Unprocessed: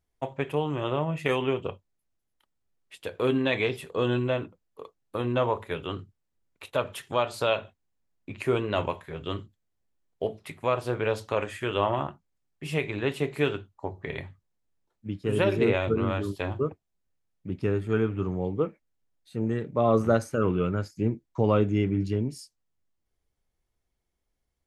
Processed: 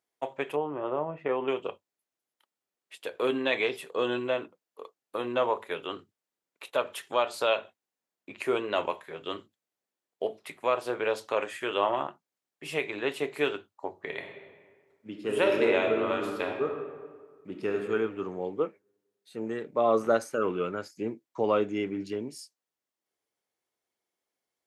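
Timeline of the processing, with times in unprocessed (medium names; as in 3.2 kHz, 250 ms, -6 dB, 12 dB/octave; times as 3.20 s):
0.56–1.48 s: low-pass 1.2 kHz
14.10–17.77 s: reverb throw, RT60 1.6 s, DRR 3 dB
whole clip: high-pass 350 Hz 12 dB/octave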